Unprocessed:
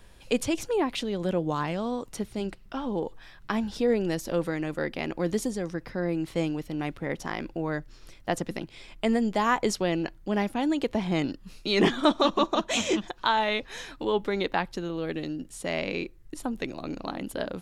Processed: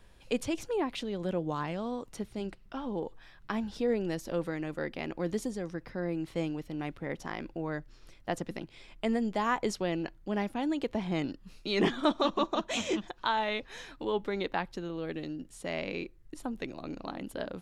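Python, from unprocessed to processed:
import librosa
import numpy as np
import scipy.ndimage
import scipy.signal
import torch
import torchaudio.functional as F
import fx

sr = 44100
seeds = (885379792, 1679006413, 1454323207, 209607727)

y = fx.high_shelf(x, sr, hz=5500.0, db=-4.5)
y = y * 10.0 ** (-5.0 / 20.0)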